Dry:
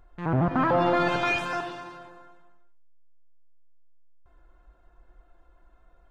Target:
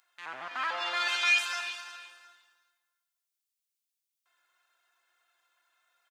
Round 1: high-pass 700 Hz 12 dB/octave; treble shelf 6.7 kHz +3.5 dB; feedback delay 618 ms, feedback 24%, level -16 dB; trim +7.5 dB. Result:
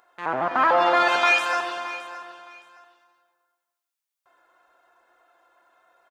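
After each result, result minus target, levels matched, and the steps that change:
echo 261 ms late; 500 Hz band +14.5 dB
change: feedback delay 357 ms, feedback 24%, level -16 dB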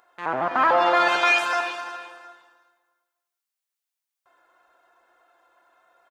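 500 Hz band +14.0 dB
change: high-pass 2.7 kHz 12 dB/octave

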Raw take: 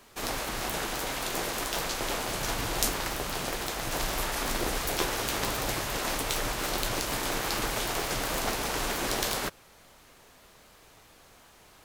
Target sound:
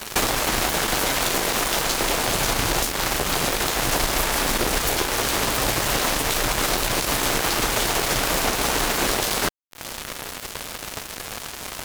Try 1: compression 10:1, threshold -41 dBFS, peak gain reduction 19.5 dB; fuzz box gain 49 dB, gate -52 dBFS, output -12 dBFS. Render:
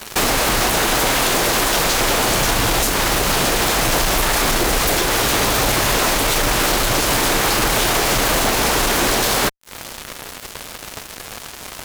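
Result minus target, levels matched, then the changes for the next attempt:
compression: peak gain reduction -6.5 dB
change: compression 10:1, threshold -48 dBFS, peak gain reduction 25.5 dB

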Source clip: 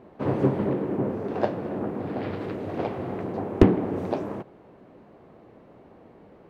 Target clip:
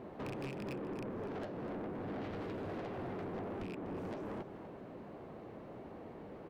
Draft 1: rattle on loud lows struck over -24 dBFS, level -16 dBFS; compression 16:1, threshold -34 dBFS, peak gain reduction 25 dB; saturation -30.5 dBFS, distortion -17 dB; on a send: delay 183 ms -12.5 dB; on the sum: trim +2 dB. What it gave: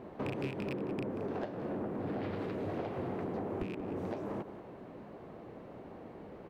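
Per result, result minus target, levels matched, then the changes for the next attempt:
saturation: distortion -9 dB; echo 64 ms early
change: saturation -40.5 dBFS, distortion -8 dB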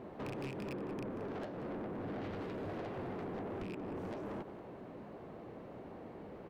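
echo 64 ms early
change: delay 247 ms -12.5 dB

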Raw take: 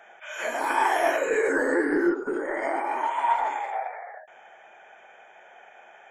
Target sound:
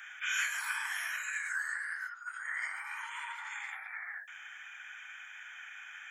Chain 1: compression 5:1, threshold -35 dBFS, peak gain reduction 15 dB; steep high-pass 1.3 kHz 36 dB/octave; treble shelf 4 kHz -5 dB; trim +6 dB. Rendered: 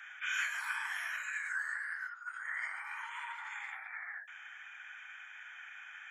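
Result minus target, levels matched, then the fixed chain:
8 kHz band -6.0 dB
compression 5:1, threshold -35 dBFS, peak gain reduction 15 dB; steep high-pass 1.3 kHz 36 dB/octave; treble shelf 4 kHz +5 dB; trim +6 dB

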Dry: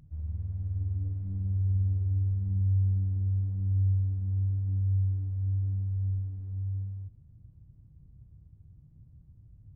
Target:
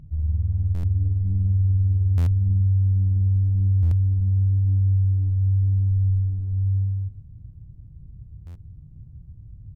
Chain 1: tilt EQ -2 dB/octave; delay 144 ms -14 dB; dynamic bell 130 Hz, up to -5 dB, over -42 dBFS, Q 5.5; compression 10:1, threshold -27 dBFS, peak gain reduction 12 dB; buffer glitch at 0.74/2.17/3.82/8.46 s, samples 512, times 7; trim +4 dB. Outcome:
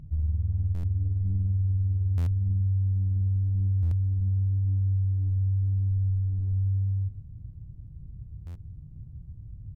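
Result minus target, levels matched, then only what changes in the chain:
compression: peak gain reduction +6 dB
change: compression 10:1, threshold -20.5 dBFS, peak gain reduction 6 dB

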